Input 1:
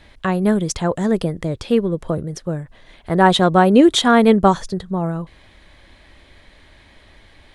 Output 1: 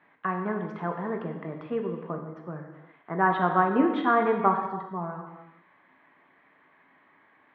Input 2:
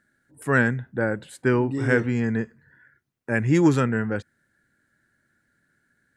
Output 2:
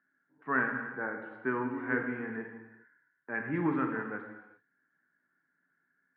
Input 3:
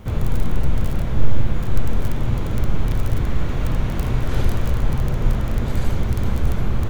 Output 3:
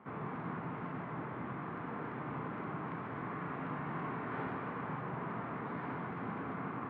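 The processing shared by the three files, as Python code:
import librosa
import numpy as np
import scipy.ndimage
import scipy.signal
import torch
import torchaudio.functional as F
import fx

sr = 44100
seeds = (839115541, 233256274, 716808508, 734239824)

y = fx.cabinet(x, sr, low_hz=190.0, low_slope=24, high_hz=2000.0, hz=(210.0, 370.0, 550.0, 1100.0), db=(-7, -6, -9, 6))
y = fx.rev_gated(y, sr, seeds[0], gate_ms=430, shape='falling', drr_db=2.5)
y = y * 10.0 ** (-8.5 / 20.0)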